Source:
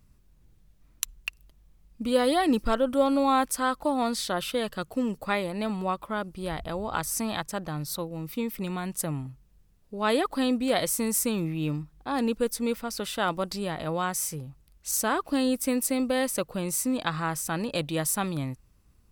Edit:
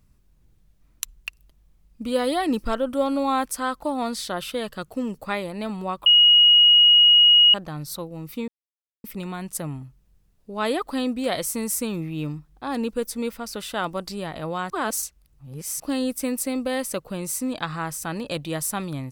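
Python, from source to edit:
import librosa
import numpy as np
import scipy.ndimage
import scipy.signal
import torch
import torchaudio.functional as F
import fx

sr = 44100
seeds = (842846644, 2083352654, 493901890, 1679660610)

y = fx.edit(x, sr, fx.bleep(start_s=6.06, length_s=1.48, hz=2890.0, db=-10.5),
    fx.insert_silence(at_s=8.48, length_s=0.56),
    fx.reverse_span(start_s=14.14, length_s=1.1), tone=tone)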